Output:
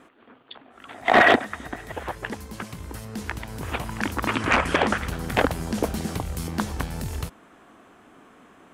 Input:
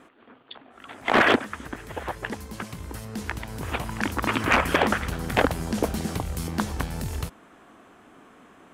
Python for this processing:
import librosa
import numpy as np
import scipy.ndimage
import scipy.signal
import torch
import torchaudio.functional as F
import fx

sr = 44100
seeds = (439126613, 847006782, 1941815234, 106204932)

y = fx.small_body(x, sr, hz=(710.0, 1900.0, 3700.0), ring_ms=25, db=10, at=(0.94, 1.92))
y = fx.lowpass(y, sr, hz=10000.0, slope=24, at=(4.33, 4.98))